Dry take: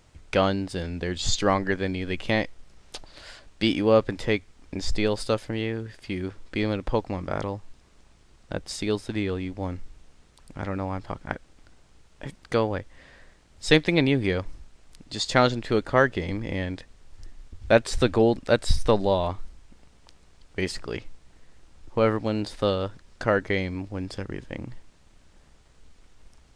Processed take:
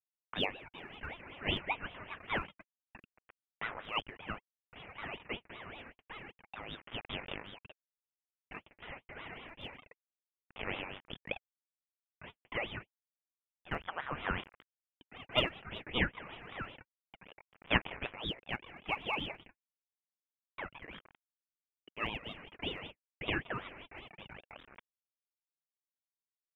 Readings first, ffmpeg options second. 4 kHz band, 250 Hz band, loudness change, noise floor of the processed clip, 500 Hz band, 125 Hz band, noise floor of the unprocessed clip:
-7.5 dB, -19.0 dB, -13.5 dB, under -85 dBFS, -20.5 dB, -17.5 dB, -57 dBFS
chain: -af "aresample=8000,acrusher=bits=5:mix=0:aa=0.000001,aresample=44100,highpass=f=830:w=0.5412,highpass=f=830:w=1.3066,lowpass=f=2.1k:t=q:w=0.5098,lowpass=f=2.1k:t=q:w=0.6013,lowpass=f=2.1k:t=q:w=0.9,lowpass=f=2.1k:t=q:w=2.563,afreqshift=-2500,aphaser=in_gain=1:out_gain=1:delay=4:decay=0.7:speed=0.28:type=sinusoidal,aeval=exprs='val(0)*sin(2*PI*1200*n/s+1200*0.45/5.2*sin(2*PI*5.2*n/s))':c=same,volume=-6dB"

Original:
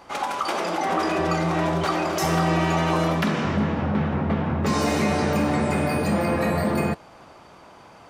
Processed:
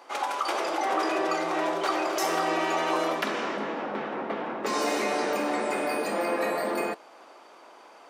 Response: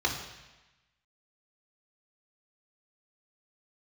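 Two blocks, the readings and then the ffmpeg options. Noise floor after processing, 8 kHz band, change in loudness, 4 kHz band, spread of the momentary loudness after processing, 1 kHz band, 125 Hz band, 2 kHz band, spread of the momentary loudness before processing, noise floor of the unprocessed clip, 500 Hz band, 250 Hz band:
-51 dBFS, -2.5 dB, -5.0 dB, -2.5 dB, 6 LU, -2.5 dB, -24.5 dB, -2.5 dB, 4 LU, -48 dBFS, -2.5 dB, -9.5 dB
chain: -af "highpass=f=310:w=0.5412,highpass=f=310:w=1.3066,volume=-2.5dB"

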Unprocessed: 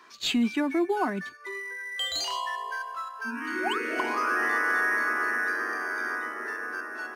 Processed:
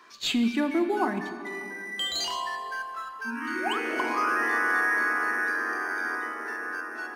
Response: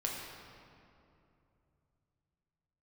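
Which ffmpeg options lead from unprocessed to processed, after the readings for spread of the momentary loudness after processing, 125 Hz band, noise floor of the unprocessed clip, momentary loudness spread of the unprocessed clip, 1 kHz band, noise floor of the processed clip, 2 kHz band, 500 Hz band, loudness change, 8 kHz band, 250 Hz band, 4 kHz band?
11 LU, n/a, -45 dBFS, 10 LU, +1.0 dB, -39 dBFS, +0.5 dB, +0.5 dB, +0.5 dB, +0.5 dB, +1.0 dB, +0.5 dB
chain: -filter_complex "[0:a]asplit=2[a][b];[1:a]atrim=start_sample=2205[c];[b][c]afir=irnorm=-1:irlink=0,volume=-5.5dB[d];[a][d]amix=inputs=2:normalize=0,volume=-3.5dB"

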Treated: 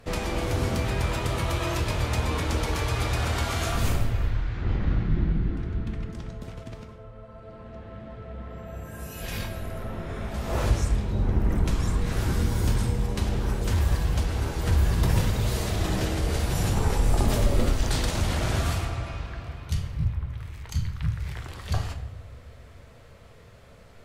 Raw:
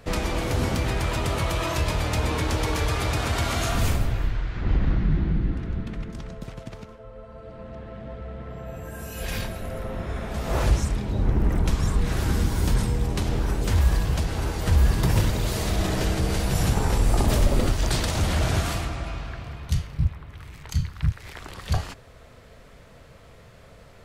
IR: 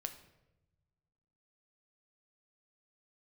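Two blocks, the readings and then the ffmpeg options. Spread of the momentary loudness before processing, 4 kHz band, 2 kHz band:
16 LU, -2.5 dB, -2.5 dB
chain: -filter_complex "[1:a]atrim=start_sample=2205,asetrate=34398,aresample=44100[a];[0:a][a]afir=irnorm=-1:irlink=0,volume=-1.5dB"

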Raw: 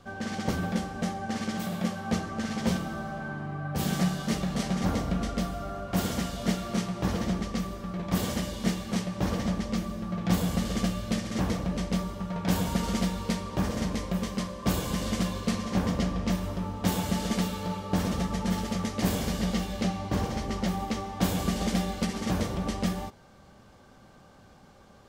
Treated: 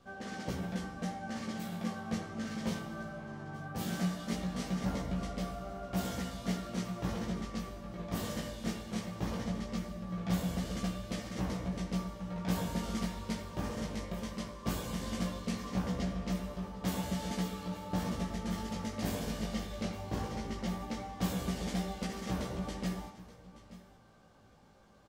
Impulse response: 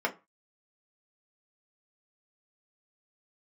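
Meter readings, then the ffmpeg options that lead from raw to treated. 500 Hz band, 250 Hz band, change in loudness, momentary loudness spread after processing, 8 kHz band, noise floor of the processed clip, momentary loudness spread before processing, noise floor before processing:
-7.0 dB, -7.5 dB, -7.5 dB, 6 LU, -8.0 dB, -59 dBFS, 5 LU, -54 dBFS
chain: -filter_complex "[0:a]aecho=1:1:877:0.133,asplit=2[a][b];[1:a]atrim=start_sample=2205,adelay=79[c];[b][c]afir=irnorm=-1:irlink=0,volume=-19dB[d];[a][d]amix=inputs=2:normalize=0,flanger=delay=15.5:depth=3.2:speed=0.18,volume=-5dB"

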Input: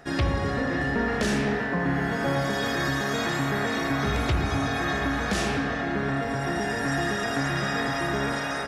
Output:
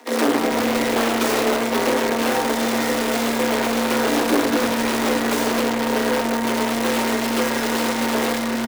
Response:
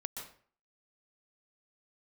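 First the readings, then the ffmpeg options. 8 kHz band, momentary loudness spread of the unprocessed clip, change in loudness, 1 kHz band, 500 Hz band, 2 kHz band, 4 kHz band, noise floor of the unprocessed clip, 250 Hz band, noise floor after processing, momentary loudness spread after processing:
+11.5 dB, 2 LU, +6.0 dB, +6.5 dB, +8.5 dB, +2.5 dB, +7.5 dB, -29 dBFS, +7.0 dB, -23 dBFS, 2 LU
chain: -filter_complex "[0:a]acrusher=bits=5:dc=4:mix=0:aa=0.000001,equalizer=f=130:t=o:w=0.46:g=-12,aecho=1:1:4.2:0.52,aeval=exprs='(mod(8.41*val(0)+1,2)-1)/8.41':c=same,afreqshift=230,tiltshelf=f=970:g=5.5,asplit=5[a][b][c][d][e];[b]adelay=159,afreqshift=-100,volume=-18.5dB[f];[c]adelay=318,afreqshift=-200,volume=-24.2dB[g];[d]adelay=477,afreqshift=-300,volume=-29.9dB[h];[e]adelay=636,afreqshift=-400,volume=-35.5dB[i];[a][f][g][h][i]amix=inputs=5:normalize=0,volume=4.5dB"

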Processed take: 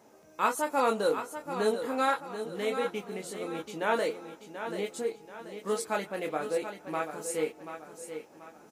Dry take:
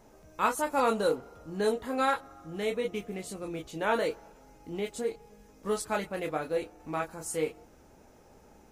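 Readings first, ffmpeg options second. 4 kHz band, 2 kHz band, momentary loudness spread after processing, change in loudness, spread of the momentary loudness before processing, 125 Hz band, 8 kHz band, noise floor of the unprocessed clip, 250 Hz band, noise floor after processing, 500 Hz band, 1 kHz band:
+0.5 dB, +0.5 dB, 15 LU, 0.0 dB, 12 LU, -4.0 dB, +0.5 dB, -58 dBFS, -1.0 dB, -56 dBFS, +0.5 dB, +0.5 dB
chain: -filter_complex "[0:a]highpass=200,asplit=2[a][b];[b]aecho=0:1:734|1468|2202|2936:0.335|0.131|0.0509|0.0199[c];[a][c]amix=inputs=2:normalize=0"

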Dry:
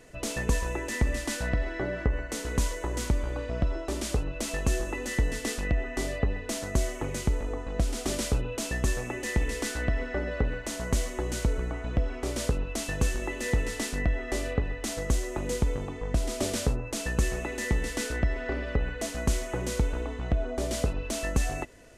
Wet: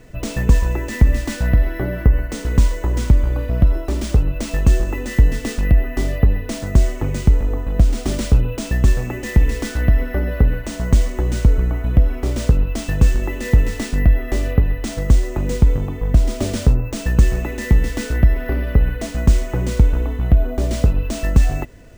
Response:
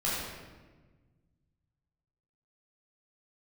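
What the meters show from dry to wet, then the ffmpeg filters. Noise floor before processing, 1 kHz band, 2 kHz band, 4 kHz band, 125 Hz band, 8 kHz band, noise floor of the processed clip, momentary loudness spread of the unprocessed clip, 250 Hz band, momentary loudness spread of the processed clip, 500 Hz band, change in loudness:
-38 dBFS, +4.5 dB, +4.0 dB, +3.5 dB, +14.0 dB, +1.0 dB, -30 dBFS, 3 LU, +10.0 dB, 5 LU, +5.5 dB, +11.5 dB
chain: -af "acrusher=samples=3:mix=1:aa=0.000001,bass=f=250:g=10,treble=f=4k:g=-3,volume=4.5dB"

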